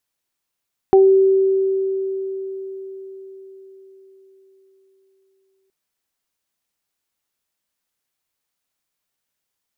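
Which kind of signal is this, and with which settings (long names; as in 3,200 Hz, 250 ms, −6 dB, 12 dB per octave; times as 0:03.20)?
harmonic partials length 4.77 s, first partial 385 Hz, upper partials −6 dB, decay 4.99 s, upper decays 0.24 s, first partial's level −7 dB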